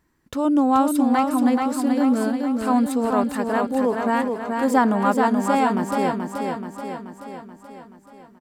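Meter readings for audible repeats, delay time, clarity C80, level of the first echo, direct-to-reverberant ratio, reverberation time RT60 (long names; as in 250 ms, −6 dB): 7, 430 ms, no reverb audible, −4.5 dB, no reverb audible, no reverb audible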